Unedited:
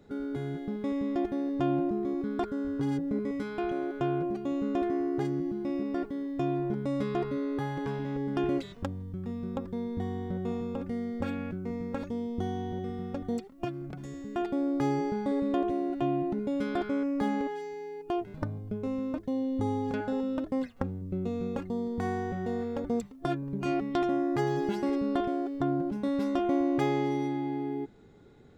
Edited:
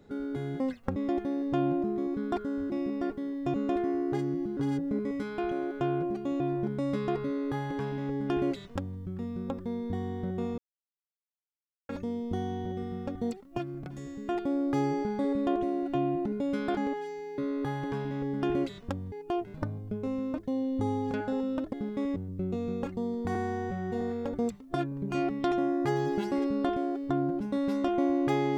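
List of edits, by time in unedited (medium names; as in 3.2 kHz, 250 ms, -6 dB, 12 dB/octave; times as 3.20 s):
0.60–1.03 s: swap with 20.53–20.89 s
2.77–4.60 s: swap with 5.63–6.47 s
7.32–9.06 s: copy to 17.92 s
10.65–11.96 s: mute
16.84–17.31 s: delete
22.08–22.52 s: stretch 1.5×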